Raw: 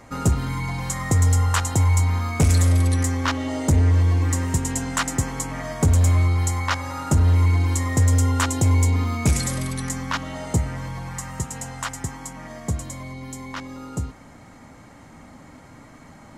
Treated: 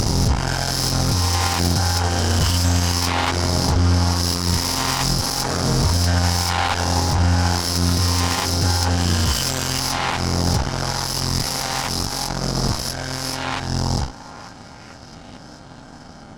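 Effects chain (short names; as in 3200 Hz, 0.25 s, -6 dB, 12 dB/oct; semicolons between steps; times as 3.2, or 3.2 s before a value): spectral swells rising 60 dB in 1.71 s; high shelf 7700 Hz +4 dB; in parallel at +1 dB: compressor, threshold -24 dBFS, peak gain reduction 13 dB; on the sum: flange 0.25 Hz, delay 3.8 ms, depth 9.7 ms, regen -80%; on a send: delay with a stepping band-pass 0.446 s, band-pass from 990 Hz, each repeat 0.7 oct, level -6 dB; on the sum: formant shift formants -6 st; added harmonics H 2 -9 dB, 7 -20 dB, 8 -17 dB, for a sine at -5.5 dBFS; maximiser +17.5 dB; gain -8 dB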